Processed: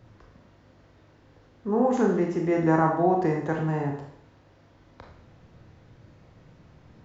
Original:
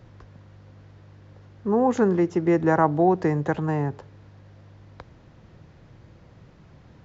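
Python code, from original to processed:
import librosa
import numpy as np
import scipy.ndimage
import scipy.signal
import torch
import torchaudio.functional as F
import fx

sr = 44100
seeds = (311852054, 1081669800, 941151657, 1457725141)

y = fx.rev_schroeder(x, sr, rt60_s=0.62, comb_ms=25, drr_db=0.5)
y = y * librosa.db_to_amplitude(-4.5)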